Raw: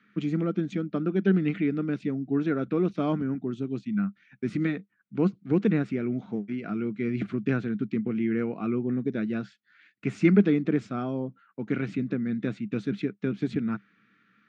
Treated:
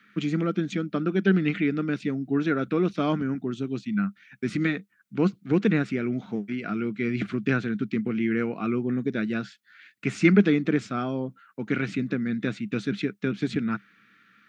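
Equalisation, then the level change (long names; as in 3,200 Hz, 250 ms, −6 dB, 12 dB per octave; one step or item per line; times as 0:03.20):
parametric band 1,500 Hz +2.5 dB
high-shelf EQ 2,100 Hz +10 dB
+1.0 dB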